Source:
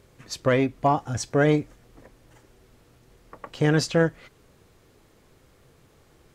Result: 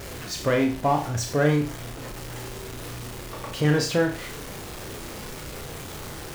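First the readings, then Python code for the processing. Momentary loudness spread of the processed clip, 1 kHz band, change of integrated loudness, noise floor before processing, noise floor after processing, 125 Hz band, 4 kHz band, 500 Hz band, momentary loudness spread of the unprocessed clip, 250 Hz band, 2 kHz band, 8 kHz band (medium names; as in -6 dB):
14 LU, 0.0 dB, -4.0 dB, -59 dBFS, -38 dBFS, +0.5 dB, +3.5 dB, -1.0 dB, 7 LU, 0.0 dB, +0.5 dB, +3.5 dB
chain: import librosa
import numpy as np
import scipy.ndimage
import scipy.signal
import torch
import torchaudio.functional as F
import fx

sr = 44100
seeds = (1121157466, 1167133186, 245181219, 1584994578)

y = x + 0.5 * 10.0 ** (-29.5 / 20.0) * np.sign(x)
y = fx.room_flutter(y, sr, wall_m=5.8, rt60_s=0.37)
y = F.gain(torch.from_numpy(y), -3.0).numpy()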